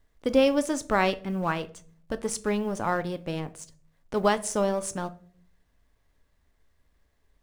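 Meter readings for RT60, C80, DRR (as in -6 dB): not exponential, 23.5 dB, 11.5 dB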